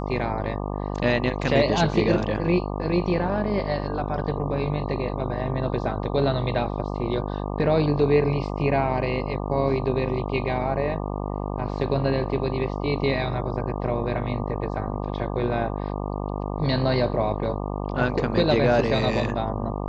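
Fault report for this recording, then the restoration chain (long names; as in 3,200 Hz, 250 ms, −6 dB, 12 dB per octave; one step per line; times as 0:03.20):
mains buzz 50 Hz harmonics 24 −29 dBFS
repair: hum removal 50 Hz, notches 24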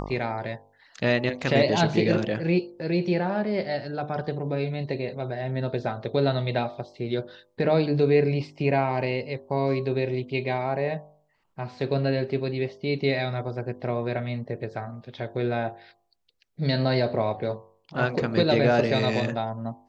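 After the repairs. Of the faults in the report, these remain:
none of them is left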